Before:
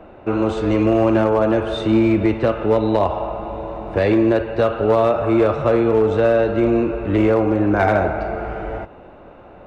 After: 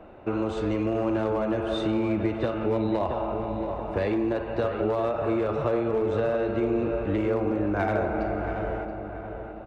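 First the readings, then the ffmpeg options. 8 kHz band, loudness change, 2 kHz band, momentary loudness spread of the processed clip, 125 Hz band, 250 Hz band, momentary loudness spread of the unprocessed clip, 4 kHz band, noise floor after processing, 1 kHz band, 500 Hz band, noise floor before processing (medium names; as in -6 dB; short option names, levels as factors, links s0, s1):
no reading, -9.5 dB, -9.0 dB, 5 LU, -8.5 dB, -9.0 dB, 11 LU, -7.5 dB, -38 dBFS, -8.5 dB, -9.0 dB, -42 dBFS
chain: -filter_complex "[0:a]acompressor=threshold=0.141:ratio=6,asplit=2[s0][s1];[s1]adelay=678,lowpass=f=2000:p=1,volume=0.447,asplit=2[s2][s3];[s3]adelay=678,lowpass=f=2000:p=1,volume=0.47,asplit=2[s4][s5];[s5]adelay=678,lowpass=f=2000:p=1,volume=0.47,asplit=2[s6][s7];[s7]adelay=678,lowpass=f=2000:p=1,volume=0.47,asplit=2[s8][s9];[s9]adelay=678,lowpass=f=2000:p=1,volume=0.47,asplit=2[s10][s11];[s11]adelay=678,lowpass=f=2000:p=1,volume=0.47[s12];[s0][s2][s4][s6][s8][s10][s12]amix=inputs=7:normalize=0,volume=0.531"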